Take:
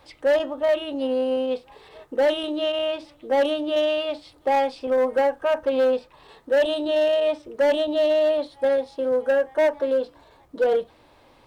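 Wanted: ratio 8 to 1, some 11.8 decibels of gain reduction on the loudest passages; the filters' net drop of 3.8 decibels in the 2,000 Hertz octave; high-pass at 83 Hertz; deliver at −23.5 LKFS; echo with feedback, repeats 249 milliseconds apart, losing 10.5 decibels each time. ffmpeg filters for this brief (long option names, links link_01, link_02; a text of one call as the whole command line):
ffmpeg -i in.wav -af "highpass=83,equalizer=frequency=2000:width_type=o:gain=-5,acompressor=threshold=-30dB:ratio=8,aecho=1:1:249|498|747:0.299|0.0896|0.0269,volume=10dB" out.wav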